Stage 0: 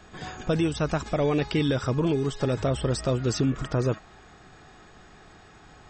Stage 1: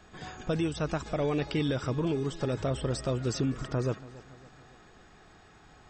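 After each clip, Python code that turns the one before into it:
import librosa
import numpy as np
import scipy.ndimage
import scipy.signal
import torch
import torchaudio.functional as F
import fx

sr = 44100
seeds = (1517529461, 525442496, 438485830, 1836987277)

y = fx.echo_feedback(x, sr, ms=281, feedback_pct=52, wet_db=-19.0)
y = F.gain(torch.from_numpy(y), -5.0).numpy()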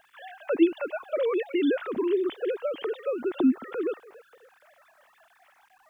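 y = fx.sine_speech(x, sr)
y = fx.quant_dither(y, sr, seeds[0], bits=12, dither='none')
y = F.gain(torch.from_numpy(y), 3.5).numpy()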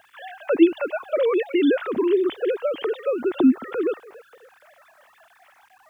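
y = scipy.signal.sosfilt(scipy.signal.butter(2, 51.0, 'highpass', fs=sr, output='sos'), x)
y = fx.peak_eq(y, sr, hz=88.0, db=8.0, octaves=0.23)
y = F.gain(torch.from_numpy(y), 5.5).numpy()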